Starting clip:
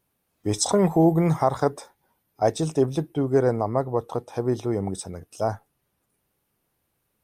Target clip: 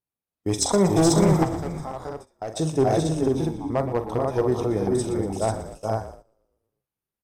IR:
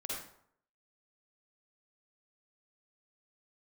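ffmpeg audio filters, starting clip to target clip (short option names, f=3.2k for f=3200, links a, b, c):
-filter_complex "[0:a]asettb=1/sr,asplit=3[a][b][c];[a]atrim=end=3.064[d];[b]atrim=start=3.06:end=3.7,asetpts=PTS-STARTPTS,afade=t=in:d=0.004:c=qsin,afade=t=out:st=0.636:d=0.004:c=qsin,asplit=3[e][f][g];[e]bandpass=f=300:t=q:w=8,volume=0dB[h];[f]bandpass=f=870:t=q:w=8,volume=-6dB[i];[g]bandpass=f=2.24k:t=q:w=8,volume=-9dB[j];[h][i][j]amix=inputs=3:normalize=0[k];[c]atrim=start=3.696[l];[d][k]acrossfade=d=0.004:c1=hsin:c2=qsin[m];[m][l]acrossfade=d=0.004:c1=qsin:c2=hsin,asplit=2[n][o];[o]aecho=0:1:45|121|426|445|490:0.316|0.112|0.531|0.422|0.631[p];[n][p]amix=inputs=2:normalize=0,aeval=exprs='clip(val(0),-1,0.2)':c=same,asplit=3[q][r][s];[q]afade=t=out:st=1.43:d=0.02[t];[r]acompressor=threshold=-35dB:ratio=2.5,afade=t=in:st=1.43:d=0.02,afade=t=out:st=2.55:d=0.02[u];[s]afade=t=in:st=2.55:d=0.02[v];[t][u][v]amix=inputs=3:normalize=0,asplit=2[w][x];[x]asplit=7[y][z][aa][ab][ac][ad][ae];[y]adelay=119,afreqshift=-35,volume=-14dB[af];[z]adelay=238,afreqshift=-70,volume=-18dB[ag];[aa]adelay=357,afreqshift=-105,volume=-22dB[ah];[ab]adelay=476,afreqshift=-140,volume=-26dB[ai];[ac]adelay=595,afreqshift=-175,volume=-30.1dB[aj];[ad]adelay=714,afreqshift=-210,volume=-34.1dB[ak];[ae]adelay=833,afreqshift=-245,volume=-38.1dB[al];[af][ag][ah][ai][aj][ak][al]amix=inputs=7:normalize=0[am];[w][am]amix=inputs=2:normalize=0,agate=range=-20dB:threshold=-38dB:ratio=16:detection=peak"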